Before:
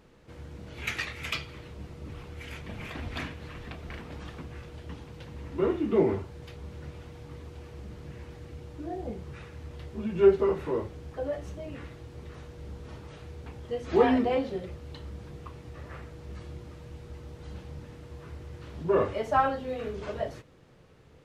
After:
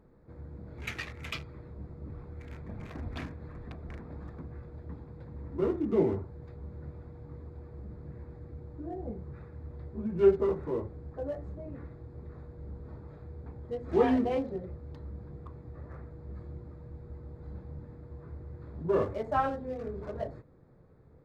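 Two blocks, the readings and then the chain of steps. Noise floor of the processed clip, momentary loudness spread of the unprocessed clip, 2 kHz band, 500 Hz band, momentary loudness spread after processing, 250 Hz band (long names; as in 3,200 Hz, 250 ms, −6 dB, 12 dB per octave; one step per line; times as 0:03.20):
−56 dBFS, 19 LU, −6.5 dB, −3.0 dB, 18 LU, −2.0 dB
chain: adaptive Wiener filter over 15 samples
low-shelf EQ 470 Hz +5 dB
level −5.5 dB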